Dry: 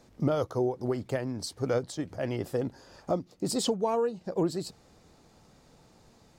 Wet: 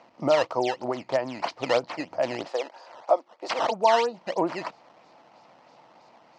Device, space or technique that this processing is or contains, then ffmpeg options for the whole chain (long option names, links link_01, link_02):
circuit-bent sampling toy: -filter_complex "[0:a]asplit=3[link_01][link_02][link_03];[link_01]afade=type=out:start_time=2.47:duration=0.02[link_04];[link_02]highpass=frequency=410:width=0.5412,highpass=frequency=410:width=1.3066,afade=type=in:start_time=2.47:duration=0.02,afade=type=out:start_time=3.7:duration=0.02[link_05];[link_03]afade=type=in:start_time=3.7:duration=0.02[link_06];[link_04][link_05][link_06]amix=inputs=3:normalize=0,acrusher=samples=11:mix=1:aa=0.000001:lfo=1:lforange=17.6:lforate=3.1,highpass=410,equalizer=frequency=420:width_type=q:width=4:gain=-9,equalizer=frequency=660:width_type=q:width=4:gain=5,equalizer=frequency=950:width_type=q:width=4:gain=6,equalizer=frequency=1600:width_type=q:width=4:gain=-5,equalizer=frequency=3600:width_type=q:width=4:gain=-6,lowpass=frequency=5100:width=0.5412,lowpass=frequency=5100:width=1.3066,equalizer=frequency=130:width_type=o:width=0.28:gain=5,volume=7.5dB"